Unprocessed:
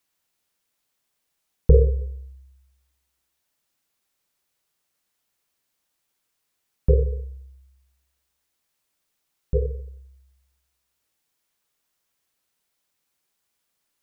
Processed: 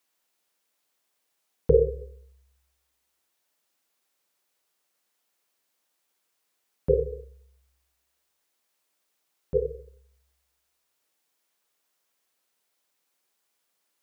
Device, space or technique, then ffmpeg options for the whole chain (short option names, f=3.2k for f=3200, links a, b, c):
filter by subtraction: -filter_complex "[0:a]asplit=2[a][b];[b]lowpass=460,volume=-1[c];[a][c]amix=inputs=2:normalize=0"